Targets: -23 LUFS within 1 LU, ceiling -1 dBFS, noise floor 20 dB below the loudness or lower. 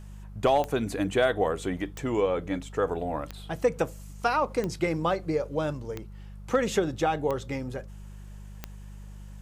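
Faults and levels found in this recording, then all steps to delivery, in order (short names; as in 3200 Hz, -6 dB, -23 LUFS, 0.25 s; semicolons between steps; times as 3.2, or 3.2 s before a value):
clicks 7; hum 50 Hz; harmonics up to 200 Hz; hum level -40 dBFS; loudness -28.5 LUFS; peak -12.0 dBFS; loudness target -23.0 LUFS
-> de-click; de-hum 50 Hz, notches 4; gain +5.5 dB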